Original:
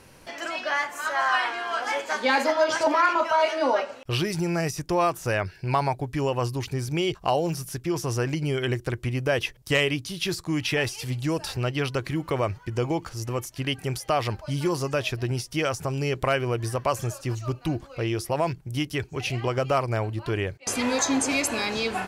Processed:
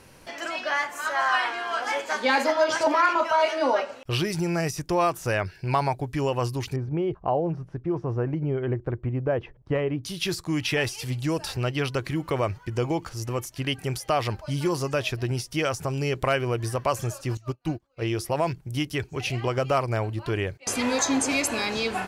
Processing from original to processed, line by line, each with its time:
6.76–10.04 s: low-pass 1 kHz
17.37–18.02 s: upward expansion 2.5:1, over -42 dBFS

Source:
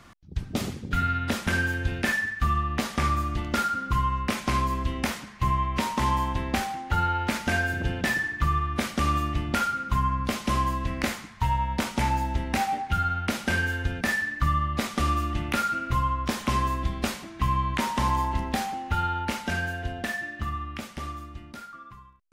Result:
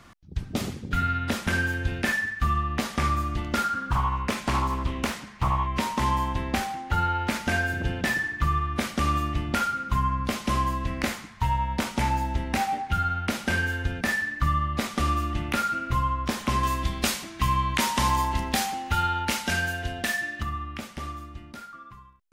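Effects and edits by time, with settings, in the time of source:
3.64–5.67 s: loudspeaker Doppler distortion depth 0.51 ms
16.63–20.43 s: treble shelf 2.3 kHz +9.5 dB

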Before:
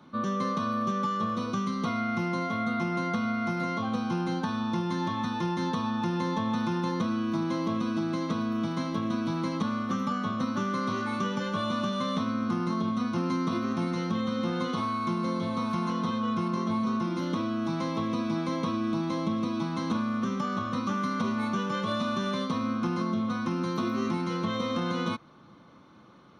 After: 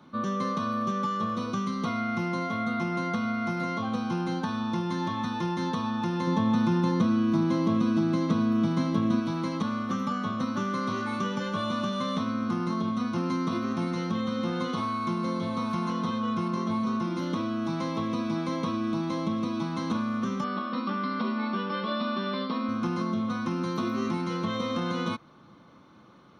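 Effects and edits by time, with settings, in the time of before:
6.27–9.20 s: peaking EQ 160 Hz +6 dB 2.7 oct
20.44–22.69 s: brick-wall FIR band-pass 180–5600 Hz

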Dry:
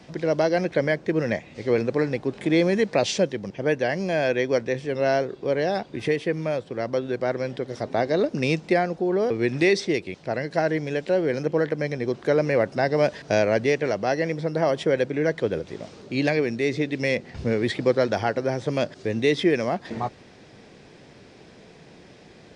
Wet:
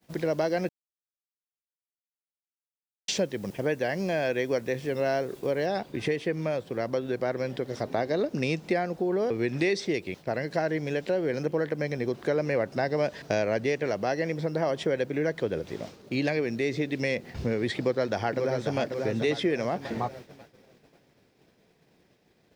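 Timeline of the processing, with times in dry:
0.69–3.08 s: mute
5.66 s: noise floor step -56 dB -66 dB
17.78–18.79 s: echo throw 540 ms, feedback 45%, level -6.5 dB
whole clip: expander -37 dBFS; compression 2:1, threshold -27 dBFS

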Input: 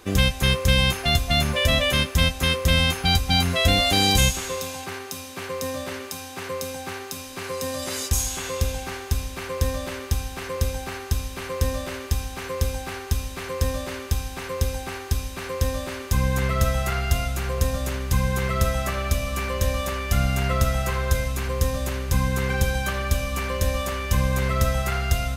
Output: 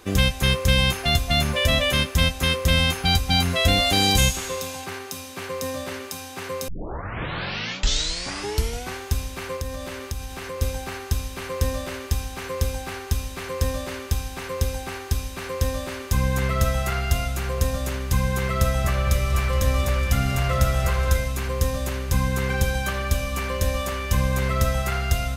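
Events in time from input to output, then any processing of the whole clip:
6.68 s: tape start 2.28 s
9.56–10.62 s: compression 2:1, threshold -30 dBFS
18.38–21.18 s: delay with an opening low-pass 230 ms, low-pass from 400 Hz, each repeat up 2 oct, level -6 dB

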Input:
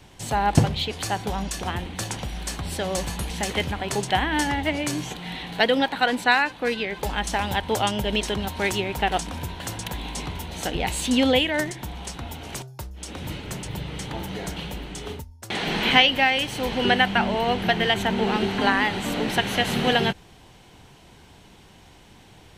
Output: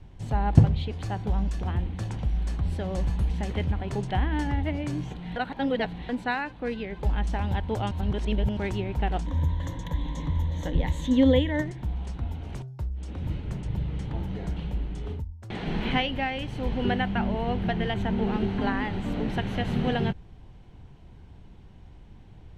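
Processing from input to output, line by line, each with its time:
5.36–6.09 s: reverse
7.91–8.57 s: reverse
9.26–11.62 s: rippled EQ curve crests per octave 1.1, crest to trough 12 dB
whole clip: RIAA curve playback; trim -9 dB

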